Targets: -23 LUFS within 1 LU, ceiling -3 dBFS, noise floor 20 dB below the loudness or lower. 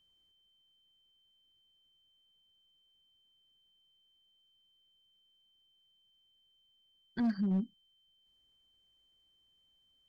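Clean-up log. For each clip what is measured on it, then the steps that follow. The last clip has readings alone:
clipped samples 0.3%; clipping level -26.5 dBFS; steady tone 3.1 kHz; tone level -69 dBFS; loudness -34.5 LUFS; peak level -26.5 dBFS; loudness target -23.0 LUFS
-> clip repair -26.5 dBFS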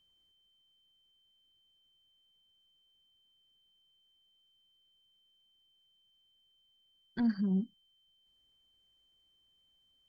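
clipped samples 0.0%; steady tone 3.1 kHz; tone level -69 dBFS
-> band-stop 3.1 kHz, Q 30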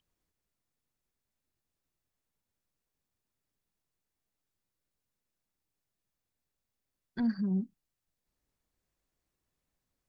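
steady tone not found; loudness -33.0 LUFS; peak level -22.5 dBFS; loudness target -23.0 LUFS
-> trim +10 dB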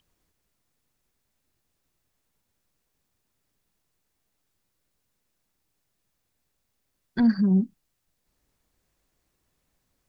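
loudness -23.0 LUFS; peak level -12.5 dBFS; noise floor -77 dBFS

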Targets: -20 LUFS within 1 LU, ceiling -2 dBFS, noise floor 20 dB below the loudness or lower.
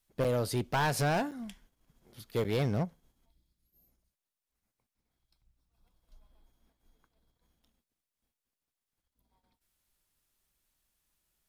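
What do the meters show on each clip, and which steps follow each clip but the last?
clipped samples 1.1%; clipping level -24.5 dBFS; dropouts 3; longest dropout 7.1 ms; loudness -31.5 LUFS; peak level -24.5 dBFS; loudness target -20.0 LUFS
-> clip repair -24.5 dBFS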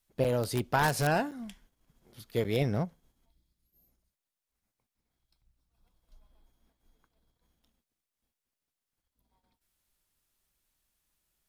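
clipped samples 0.0%; dropouts 3; longest dropout 7.1 ms
-> interpolate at 0.24/1.31/2.44 s, 7.1 ms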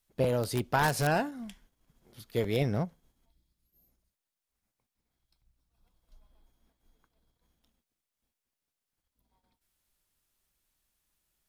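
dropouts 0; loudness -30.0 LUFS; peak level -15.5 dBFS; loudness target -20.0 LUFS
-> trim +10 dB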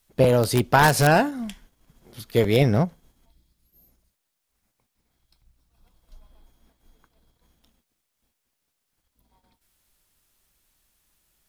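loudness -20.5 LUFS; peak level -5.5 dBFS; noise floor -78 dBFS

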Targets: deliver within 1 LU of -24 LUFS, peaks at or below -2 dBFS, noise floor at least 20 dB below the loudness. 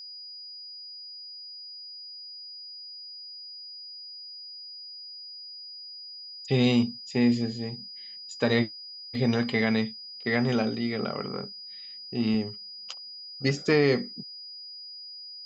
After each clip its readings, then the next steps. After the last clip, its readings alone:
steady tone 4.9 kHz; tone level -40 dBFS; loudness -30.5 LUFS; peak level -10.0 dBFS; loudness target -24.0 LUFS
-> band-stop 4.9 kHz, Q 30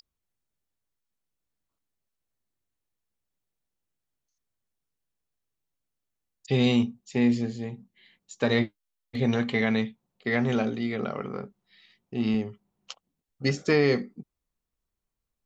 steady tone not found; loudness -27.0 LUFS; peak level -10.0 dBFS; loudness target -24.0 LUFS
-> trim +3 dB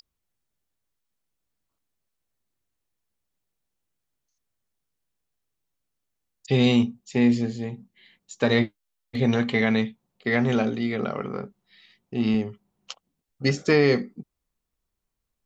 loudness -24.0 LUFS; peak level -7.0 dBFS; noise floor -82 dBFS

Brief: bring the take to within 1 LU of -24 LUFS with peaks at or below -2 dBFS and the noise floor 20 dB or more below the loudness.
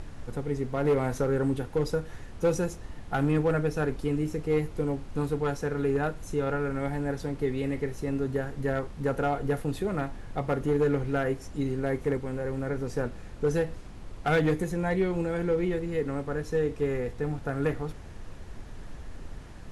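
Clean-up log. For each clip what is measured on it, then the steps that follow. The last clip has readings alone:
clipped samples 0.5%; clipping level -18.5 dBFS; noise floor -43 dBFS; noise floor target -50 dBFS; loudness -29.5 LUFS; peak level -18.5 dBFS; loudness target -24.0 LUFS
-> clip repair -18.5 dBFS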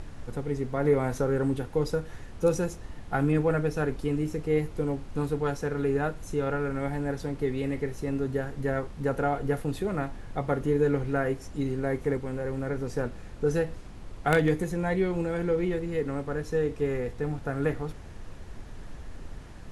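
clipped samples 0.0%; noise floor -43 dBFS; noise floor target -50 dBFS
-> noise print and reduce 7 dB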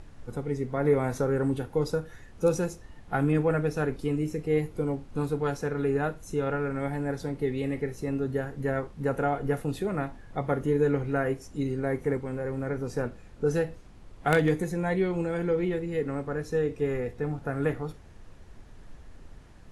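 noise floor -49 dBFS; noise floor target -50 dBFS
-> noise print and reduce 6 dB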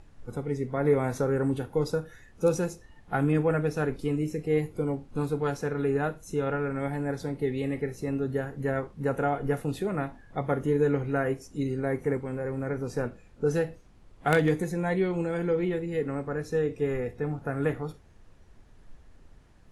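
noise floor -55 dBFS; loudness -29.5 LUFS; peak level -9.0 dBFS; loudness target -24.0 LUFS
-> trim +5.5 dB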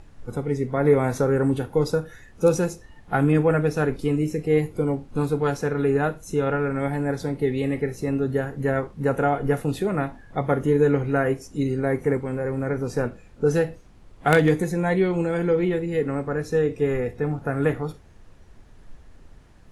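loudness -24.0 LUFS; peak level -3.5 dBFS; noise floor -49 dBFS

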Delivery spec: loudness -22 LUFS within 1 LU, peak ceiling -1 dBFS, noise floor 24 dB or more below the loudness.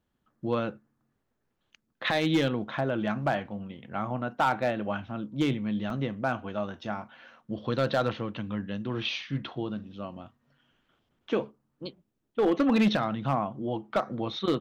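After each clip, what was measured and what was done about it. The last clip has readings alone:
clipped samples 0.4%; clipping level -17.5 dBFS; dropouts 1; longest dropout 1.9 ms; loudness -30.0 LUFS; peak level -17.5 dBFS; loudness target -22.0 LUFS
-> clip repair -17.5 dBFS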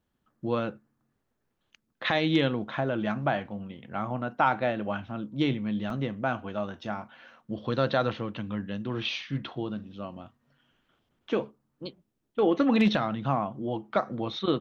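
clipped samples 0.0%; dropouts 1; longest dropout 1.9 ms
-> interpolate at 5.90 s, 1.9 ms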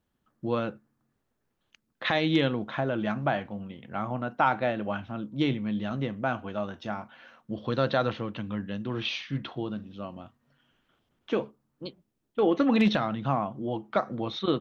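dropouts 0; loudness -29.5 LUFS; peak level -10.5 dBFS; loudness target -22.0 LUFS
-> trim +7.5 dB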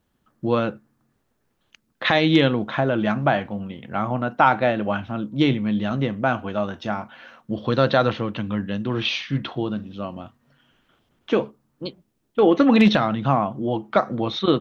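loudness -22.0 LUFS; peak level -3.0 dBFS; noise floor -71 dBFS

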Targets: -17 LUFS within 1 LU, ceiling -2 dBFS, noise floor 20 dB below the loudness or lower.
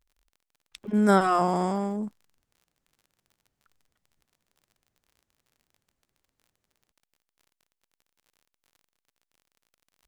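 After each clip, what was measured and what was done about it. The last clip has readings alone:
tick rate 40 per s; loudness -24.5 LUFS; peak level -8.0 dBFS; loudness target -17.0 LUFS
-> de-click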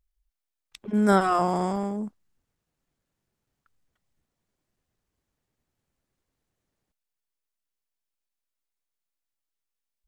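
tick rate 0.099 per s; loudness -24.5 LUFS; peak level -8.0 dBFS; loudness target -17.0 LUFS
-> trim +7.5 dB; peak limiter -2 dBFS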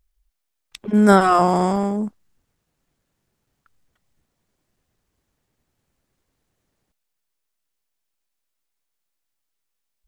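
loudness -17.0 LUFS; peak level -2.0 dBFS; noise floor -78 dBFS

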